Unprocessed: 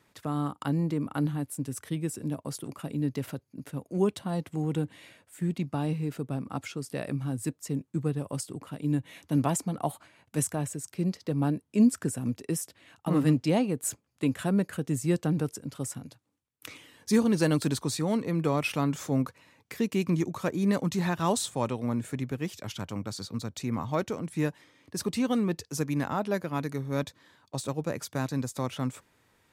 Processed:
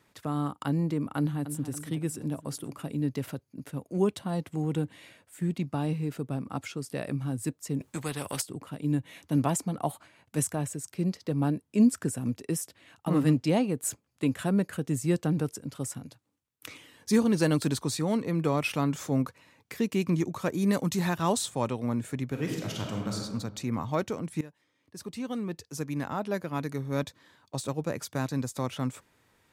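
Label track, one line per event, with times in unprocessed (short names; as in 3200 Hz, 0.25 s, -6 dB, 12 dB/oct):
1.170000	1.700000	echo throw 0.28 s, feedback 55%, level -10.5 dB
7.800000	8.420000	spectral compressor 2:1
20.490000	21.180000	high shelf 6900 Hz +8.5 dB
22.260000	23.170000	reverb throw, RT60 1.4 s, DRR 0 dB
24.410000	26.870000	fade in, from -19 dB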